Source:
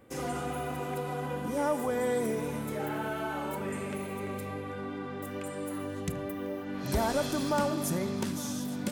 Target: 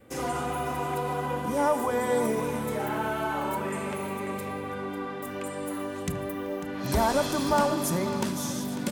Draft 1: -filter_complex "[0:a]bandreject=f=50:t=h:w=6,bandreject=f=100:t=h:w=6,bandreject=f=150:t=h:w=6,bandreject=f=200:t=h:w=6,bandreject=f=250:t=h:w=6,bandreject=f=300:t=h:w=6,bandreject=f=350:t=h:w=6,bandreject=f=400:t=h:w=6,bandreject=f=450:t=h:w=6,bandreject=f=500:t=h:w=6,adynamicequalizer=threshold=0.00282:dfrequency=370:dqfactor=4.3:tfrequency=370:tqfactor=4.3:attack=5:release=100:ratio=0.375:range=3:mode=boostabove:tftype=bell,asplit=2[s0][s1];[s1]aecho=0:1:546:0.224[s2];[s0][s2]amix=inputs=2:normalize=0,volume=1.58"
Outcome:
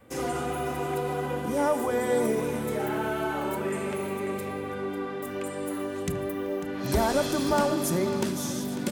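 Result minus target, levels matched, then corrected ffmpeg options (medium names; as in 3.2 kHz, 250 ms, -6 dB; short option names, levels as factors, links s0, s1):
1 kHz band -3.0 dB
-filter_complex "[0:a]bandreject=f=50:t=h:w=6,bandreject=f=100:t=h:w=6,bandreject=f=150:t=h:w=6,bandreject=f=200:t=h:w=6,bandreject=f=250:t=h:w=6,bandreject=f=300:t=h:w=6,bandreject=f=350:t=h:w=6,bandreject=f=400:t=h:w=6,bandreject=f=450:t=h:w=6,bandreject=f=500:t=h:w=6,adynamicequalizer=threshold=0.00282:dfrequency=1000:dqfactor=4.3:tfrequency=1000:tqfactor=4.3:attack=5:release=100:ratio=0.375:range=3:mode=boostabove:tftype=bell,asplit=2[s0][s1];[s1]aecho=0:1:546:0.224[s2];[s0][s2]amix=inputs=2:normalize=0,volume=1.58"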